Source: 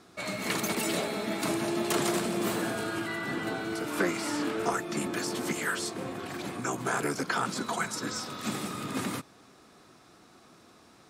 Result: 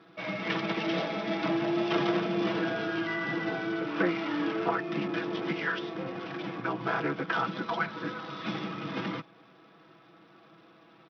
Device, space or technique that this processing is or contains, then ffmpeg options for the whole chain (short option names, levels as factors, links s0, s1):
Bluetooth headset: -af "highpass=120,aecho=1:1:6.1:0.74,aresample=8000,aresample=44100,volume=0.841" -ar 44100 -c:a sbc -b:a 64k